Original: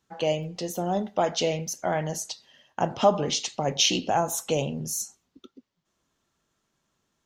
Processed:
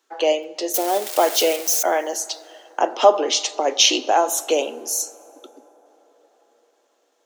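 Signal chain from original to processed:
0:00.74–0:01.83: spike at every zero crossing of −22.5 dBFS
Butterworth high-pass 300 Hz 48 dB per octave
dense smooth reverb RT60 4.9 s, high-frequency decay 0.35×, DRR 19.5 dB
level +7 dB

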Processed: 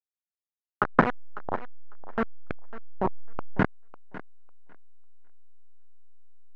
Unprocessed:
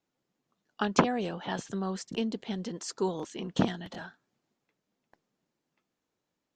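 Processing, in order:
hold until the input has moved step −19.5 dBFS
auto-filter low-pass saw up 0.77 Hz 690–2,100 Hz
feedback echo with a high-pass in the loop 550 ms, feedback 16%, high-pass 280 Hz, level −15 dB
level +2 dB

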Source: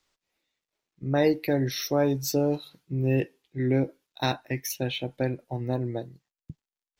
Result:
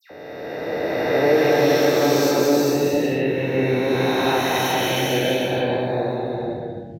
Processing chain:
peak hold with a rise ahead of every peak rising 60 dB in 2.68 s
high-pass filter 52 Hz
bass and treble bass −9 dB, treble −10 dB
in parallel at 0 dB: downward compressor, threshold −34 dBFS, peak gain reduction 17 dB
on the sum: all-pass dispersion lows, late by 107 ms, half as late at 2,100 Hz
on a send: bouncing-ball delay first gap 180 ms, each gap 0.65×, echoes 5
on the sum: reverb whose tail is shaped and stops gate 490 ms rising, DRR 0.5 dB

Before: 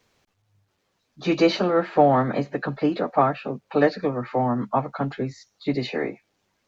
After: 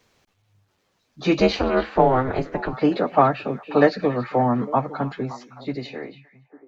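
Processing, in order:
fade-out on the ending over 2.20 s
0:01.39–0:02.73: ring modulation 130 Hz
echo through a band-pass that steps 284 ms, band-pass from 2,800 Hz, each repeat −1.4 octaves, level −11 dB
level +3 dB

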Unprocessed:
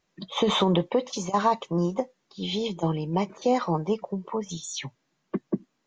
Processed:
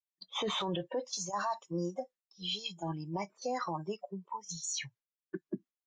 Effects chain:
noise reduction from a noise print of the clip's start 21 dB
noise gate with hold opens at −55 dBFS
low-shelf EQ 470 Hz −11.5 dB
brickwall limiter −26 dBFS, peak gain reduction 11.5 dB

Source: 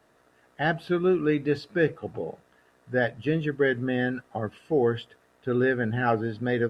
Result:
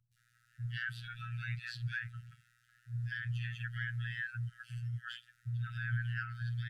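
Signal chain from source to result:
three-band delay without the direct sound lows, highs, mids 120/170 ms, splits 380/2,800 Hz
phases set to zero 119 Hz
brickwall limiter −20 dBFS, peak gain reduction 10.5 dB
linear-phase brick-wall band-stop 170–1,300 Hz
level −1 dB

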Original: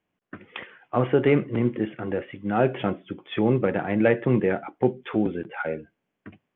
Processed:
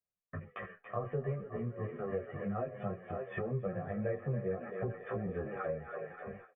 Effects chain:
low-pass filter 1,900 Hz 24 dB per octave
low-shelf EQ 340 Hz +8 dB
comb filter 1.7 ms, depth 93%
feedback echo with a high-pass in the loop 280 ms, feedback 77%, high-pass 400 Hz, level −8 dB
multi-voice chorus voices 4, 0.31 Hz, delay 16 ms, depth 4.9 ms
noise gate with hold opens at −34 dBFS
downward compressor 6 to 1, threshold −32 dBFS, peak gain reduction 19.5 dB
barber-pole flanger 9.1 ms −2.6 Hz

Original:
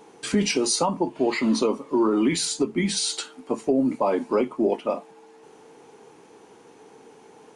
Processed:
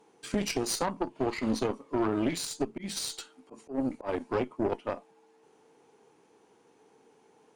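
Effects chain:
0:02.60–0:04.09: volume swells 107 ms
harmonic generator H 2 −8 dB, 6 −31 dB, 7 −25 dB, 8 −32 dB, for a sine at −11 dBFS
level −8 dB

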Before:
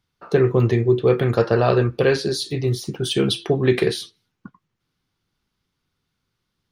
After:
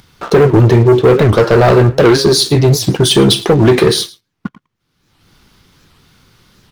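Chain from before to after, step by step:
dynamic equaliser 2,500 Hz, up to −5 dB, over −40 dBFS, Q 1.5
in parallel at +2 dB: downward compressor, threshold −22 dBFS, peak gain reduction 10.5 dB
on the sum: leveller curve on the samples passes 3
upward compression, threshold −26 dBFS
on a send: single-tap delay 109 ms −20.5 dB
on the sum: wow of a warped record 78 rpm, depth 250 cents
level −1 dB

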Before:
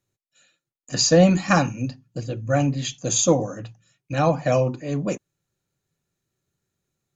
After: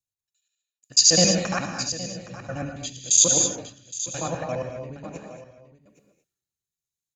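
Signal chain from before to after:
reversed piece by piece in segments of 69 ms
high-shelf EQ 2,500 Hz +12 dB
upward compression, threshold −32 dBFS
on a send: single-tap delay 817 ms −8 dB
on the sum: reverb whose tail is shaped and stops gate 260 ms rising, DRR 2.5 dB
multiband upward and downward expander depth 100%
level −13 dB

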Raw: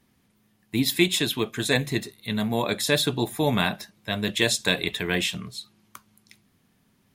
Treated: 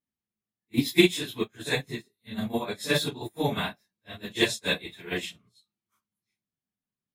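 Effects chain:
random phases in long frames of 100 ms
expander for the loud parts 2.5 to 1, over −39 dBFS
level +4 dB

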